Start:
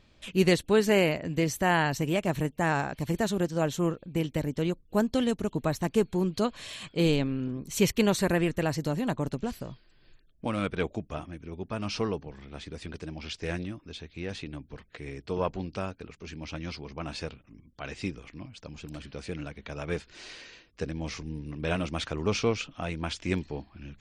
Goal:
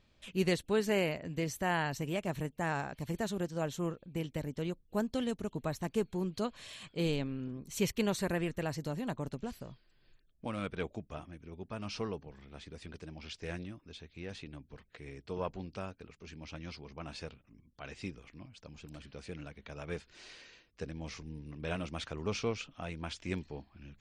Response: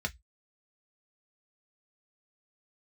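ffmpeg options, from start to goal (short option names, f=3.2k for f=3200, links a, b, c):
-af "equalizer=f=310:t=o:w=0.26:g=-2.5,volume=-7.5dB"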